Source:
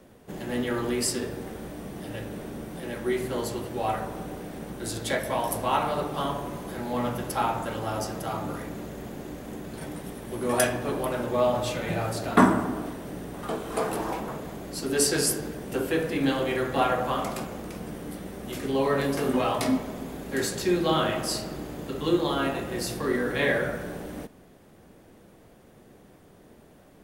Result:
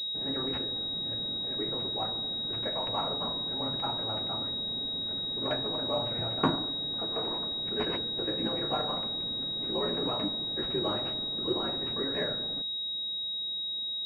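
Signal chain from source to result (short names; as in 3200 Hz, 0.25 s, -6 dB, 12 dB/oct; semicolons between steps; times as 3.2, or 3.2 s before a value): granular stretch 0.52×, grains 20 ms; pulse-width modulation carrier 3800 Hz; gain -6 dB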